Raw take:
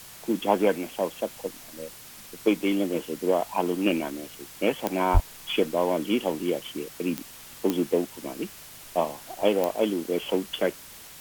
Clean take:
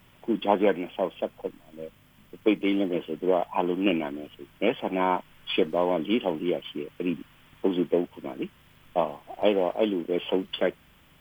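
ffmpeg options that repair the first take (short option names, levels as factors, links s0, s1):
-filter_complex "[0:a]adeclick=t=4,asplit=3[s0][s1][s2];[s0]afade=t=out:st=5.13:d=0.02[s3];[s1]highpass=f=140:w=0.5412,highpass=f=140:w=1.3066,afade=t=in:st=5.13:d=0.02,afade=t=out:st=5.25:d=0.02[s4];[s2]afade=t=in:st=5.25:d=0.02[s5];[s3][s4][s5]amix=inputs=3:normalize=0,afwtdn=0.0056"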